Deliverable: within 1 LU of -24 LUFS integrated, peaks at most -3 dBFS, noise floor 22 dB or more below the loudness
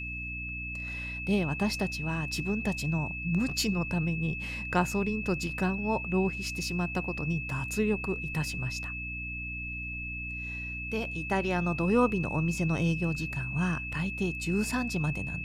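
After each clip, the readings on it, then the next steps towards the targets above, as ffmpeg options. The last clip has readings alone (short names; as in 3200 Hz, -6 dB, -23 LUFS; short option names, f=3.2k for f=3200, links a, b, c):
hum 60 Hz; harmonics up to 300 Hz; hum level -39 dBFS; steady tone 2600 Hz; tone level -36 dBFS; loudness -30.5 LUFS; peak -12.0 dBFS; loudness target -24.0 LUFS
-> -af "bandreject=f=60:t=h:w=6,bandreject=f=120:t=h:w=6,bandreject=f=180:t=h:w=6,bandreject=f=240:t=h:w=6,bandreject=f=300:t=h:w=6"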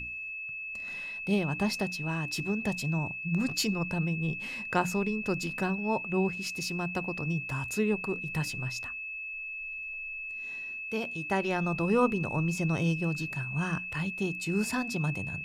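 hum none; steady tone 2600 Hz; tone level -36 dBFS
-> -af "bandreject=f=2.6k:w=30"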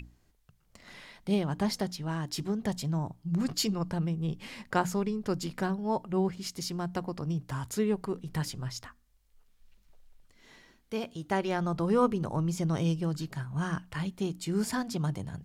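steady tone none; loudness -32.0 LUFS; peak -13.0 dBFS; loudness target -24.0 LUFS
-> -af "volume=8dB"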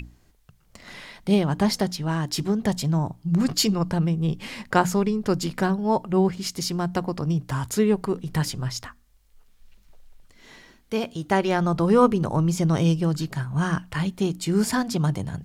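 loudness -24.0 LUFS; peak -5.0 dBFS; noise floor -59 dBFS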